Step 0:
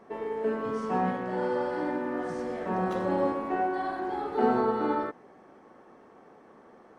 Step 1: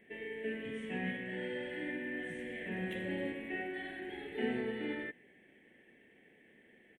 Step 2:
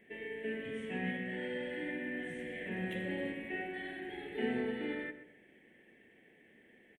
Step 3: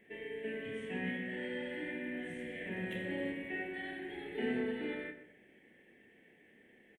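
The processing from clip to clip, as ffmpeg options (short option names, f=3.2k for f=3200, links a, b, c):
-af "firequalizer=gain_entry='entry(200,0);entry(460,-4);entry(1200,-26);entry(1800,13);entry(3200,12);entry(4800,-19);entry(8500,6)':delay=0.05:min_phase=1,volume=-7.5dB"
-filter_complex "[0:a]asplit=2[a][b];[b]adelay=125,lowpass=f=1.3k:p=1,volume=-9.5dB,asplit=2[c][d];[d]adelay=125,lowpass=f=1.3k:p=1,volume=0.38,asplit=2[e][f];[f]adelay=125,lowpass=f=1.3k:p=1,volume=0.38,asplit=2[g][h];[h]adelay=125,lowpass=f=1.3k:p=1,volume=0.38[i];[a][c][e][g][i]amix=inputs=5:normalize=0"
-filter_complex "[0:a]asplit=2[a][b];[b]adelay=29,volume=-8dB[c];[a][c]amix=inputs=2:normalize=0,volume=-1dB"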